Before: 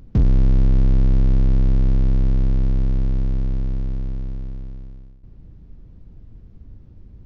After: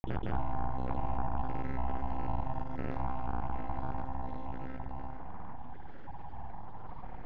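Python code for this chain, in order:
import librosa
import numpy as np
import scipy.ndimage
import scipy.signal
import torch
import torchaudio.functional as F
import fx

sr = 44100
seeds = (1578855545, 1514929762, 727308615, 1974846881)

p1 = fx.spec_dropout(x, sr, seeds[0], share_pct=69)
p2 = fx.brickwall_highpass(p1, sr, low_hz=340.0)
p3 = np.abs(p2)
p4 = scipy.signal.sosfilt(scipy.signal.butter(2, 1100.0, 'lowpass', fs=sr, output='sos'), p3)
p5 = p4 + fx.echo_feedback(p4, sr, ms=65, feedback_pct=57, wet_db=-3, dry=0)
p6 = fx.granulator(p5, sr, seeds[1], grain_ms=100.0, per_s=20.0, spray_ms=100.0, spread_st=0)
p7 = fx.env_flatten(p6, sr, amount_pct=70)
y = p7 * 10.0 ** (7.5 / 20.0)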